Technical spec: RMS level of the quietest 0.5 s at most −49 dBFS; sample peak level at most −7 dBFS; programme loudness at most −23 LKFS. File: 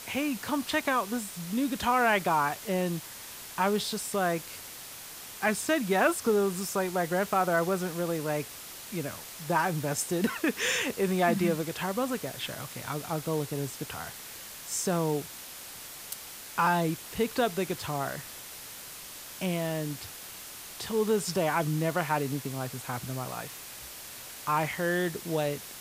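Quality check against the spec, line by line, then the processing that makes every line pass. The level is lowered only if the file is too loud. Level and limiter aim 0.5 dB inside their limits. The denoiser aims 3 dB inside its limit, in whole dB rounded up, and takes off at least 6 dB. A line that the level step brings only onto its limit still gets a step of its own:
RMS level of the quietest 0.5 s −44 dBFS: out of spec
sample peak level −12.5 dBFS: in spec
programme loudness −30.0 LKFS: in spec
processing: broadband denoise 8 dB, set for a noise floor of −44 dBFS

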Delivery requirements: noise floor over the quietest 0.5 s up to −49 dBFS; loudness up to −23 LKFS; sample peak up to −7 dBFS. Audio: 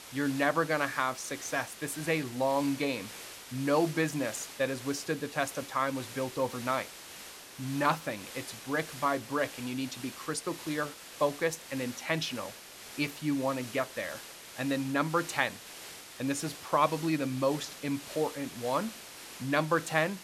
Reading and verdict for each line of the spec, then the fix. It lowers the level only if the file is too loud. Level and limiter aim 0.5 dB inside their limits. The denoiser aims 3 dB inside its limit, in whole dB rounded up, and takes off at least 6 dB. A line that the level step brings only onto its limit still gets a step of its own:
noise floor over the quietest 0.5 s −48 dBFS: out of spec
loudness −32.0 LKFS: in spec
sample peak −10.0 dBFS: in spec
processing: broadband denoise 6 dB, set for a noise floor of −48 dBFS

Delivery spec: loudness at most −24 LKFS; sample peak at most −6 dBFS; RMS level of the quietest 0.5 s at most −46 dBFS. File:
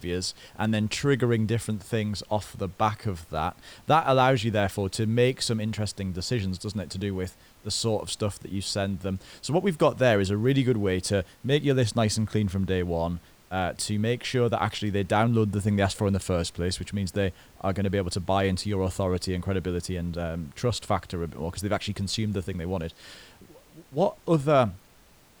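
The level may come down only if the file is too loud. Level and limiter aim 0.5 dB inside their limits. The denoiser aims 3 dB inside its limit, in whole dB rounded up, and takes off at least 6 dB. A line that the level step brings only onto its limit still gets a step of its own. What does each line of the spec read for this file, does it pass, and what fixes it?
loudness −27.0 LKFS: in spec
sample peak −10.0 dBFS: in spec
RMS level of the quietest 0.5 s −56 dBFS: in spec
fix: no processing needed

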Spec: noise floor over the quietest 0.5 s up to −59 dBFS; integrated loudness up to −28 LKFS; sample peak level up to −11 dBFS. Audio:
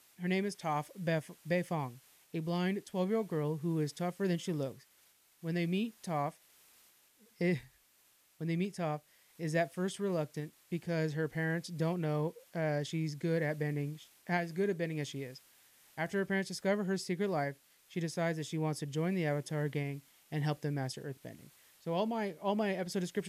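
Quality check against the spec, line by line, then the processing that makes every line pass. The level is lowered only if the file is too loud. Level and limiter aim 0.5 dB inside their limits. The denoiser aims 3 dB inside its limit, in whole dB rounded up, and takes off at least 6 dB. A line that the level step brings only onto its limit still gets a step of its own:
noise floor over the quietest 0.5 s −68 dBFS: in spec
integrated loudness −36.0 LKFS: in spec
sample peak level −20.0 dBFS: in spec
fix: no processing needed

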